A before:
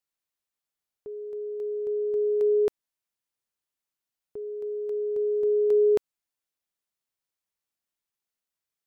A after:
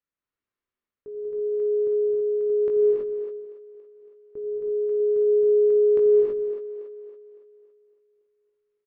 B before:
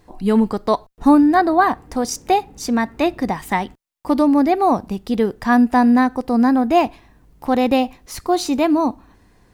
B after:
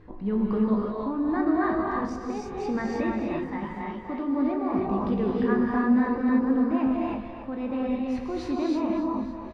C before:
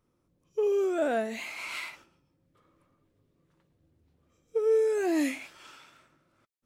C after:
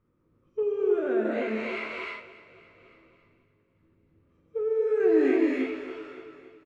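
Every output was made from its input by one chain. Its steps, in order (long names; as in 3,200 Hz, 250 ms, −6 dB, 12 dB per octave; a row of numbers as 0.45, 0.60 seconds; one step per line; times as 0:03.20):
reversed playback
downward compressor, threshold −25 dBFS
reversed playback
low-pass filter 1,800 Hz 12 dB per octave
double-tracking delay 19 ms −8.5 dB
on a send: echo with a time of its own for lows and highs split 330 Hz, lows 87 ms, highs 280 ms, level −12 dB
on the sum: brickwall limiter −22 dBFS
sample-and-hold tremolo 1.6 Hz
parametric band 760 Hz −9 dB 0.72 octaves
reverb whose tail is shaped and stops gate 350 ms rising, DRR −3 dB
normalise the peak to −12 dBFS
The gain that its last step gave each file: +3.0, +4.0, +4.0 decibels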